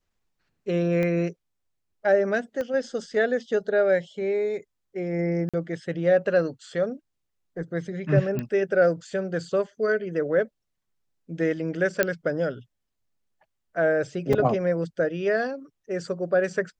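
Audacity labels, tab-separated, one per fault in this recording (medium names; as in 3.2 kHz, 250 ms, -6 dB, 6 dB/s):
1.030000	1.030000	pop -17 dBFS
2.610000	2.610000	pop -19 dBFS
5.490000	5.540000	dropout 46 ms
8.390000	8.390000	pop -17 dBFS
12.030000	12.030000	pop -7 dBFS
14.330000	14.330000	dropout 3.9 ms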